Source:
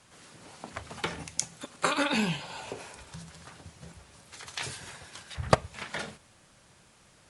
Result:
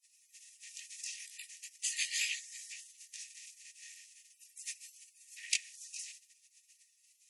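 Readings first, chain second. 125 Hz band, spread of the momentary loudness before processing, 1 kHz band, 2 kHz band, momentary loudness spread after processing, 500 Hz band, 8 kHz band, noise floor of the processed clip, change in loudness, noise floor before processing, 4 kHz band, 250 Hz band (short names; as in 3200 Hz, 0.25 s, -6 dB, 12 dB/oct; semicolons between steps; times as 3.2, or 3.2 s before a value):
under -40 dB, 22 LU, under -40 dB, -7.0 dB, 21 LU, under -40 dB, +0.5 dB, -71 dBFS, -7.0 dB, -60 dBFS, -4.0 dB, under -40 dB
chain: chorus 2.2 Hz, delay 18.5 ms, depth 6.6 ms; spectral gate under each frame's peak -20 dB weak; rippled Chebyshev high-pass 1800 Hz, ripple 9 dB; gain +12 dB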